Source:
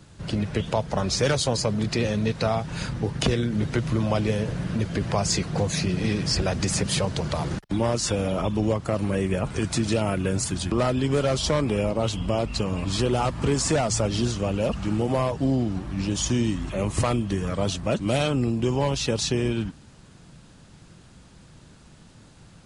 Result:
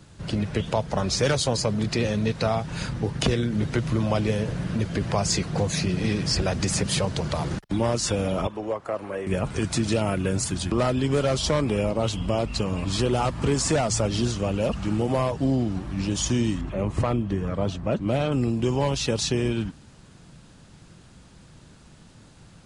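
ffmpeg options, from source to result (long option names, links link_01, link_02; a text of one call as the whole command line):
ffmpeg -i in.wav -filter_complex "[0:a]asettb=1/sr,asplit=3[link_01][link_02][link_03];[link_01]atrim=end=8.474[link_04];[link_02]atrim=start=8.47:end=9.27,asetpts=PTS-STARTPTS,afade=type=in:duration=0.004:curve=qsin,afade=type=out:start_time=0.796:duration=0.004:curve=qsin,acrossover=split=380 2000:gain=0.126 1 0.251[link_05][link_06][link_07];[link_05][link_06][link_07]amix=inputs=3:normalize=0[link_08];[link_03]atrim=start=9.266[link_09];[link_04][link_08]acrossfade=duration=0.004:curve1=hsin:curve2=qsin[link_10];[link_10][link_09]acrossfade=duration=0.004:curve1=qsin:curve2=hsin,asettb=1/sr,asplit=3[link_11][link_12][link_13];[link_11]atrim=end=16.614[link_14];[link_12]atrim=start=16.61:end=18.32,asetpts=PTS-STARTPTS,afade=type=in:duration=0.004:curve=qsin,afade=type=out:start_time=1.706:duration=0.004:curve=qsin,lowpass=frequency=1500:poles=1[link_15];[link_13]atrim=start=18.316[link_16];[link_14][link_15]acrossfade=duration=0.004:curve1=hsin:curve2=qsin[link_17];[link_17][link_16]acrossfade=duration=0.004:curve1=qsin:curve2=hsin" out.wav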